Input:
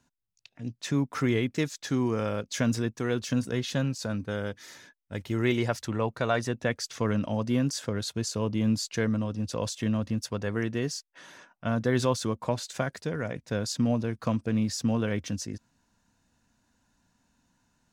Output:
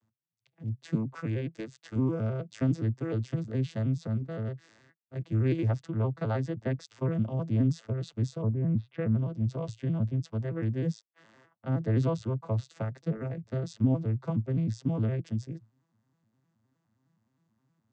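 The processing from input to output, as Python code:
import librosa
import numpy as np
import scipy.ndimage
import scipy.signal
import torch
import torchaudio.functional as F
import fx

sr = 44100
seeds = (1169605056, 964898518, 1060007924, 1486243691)

y = fx.vocoder_arp(x, sr, chord='minor triad', root=45, every_ms=104)
y = fx.peak_eq(y, sr, hz=170.0, db=-7.5, octaves=2.5, at=(1.13, 1.96))
y = fx.lowpass(y, sr, hz=fx.line((8.41, 1400.0), (9.04, 3600.0)), slope=24, at=(8.41, 9.04), fade=0.02)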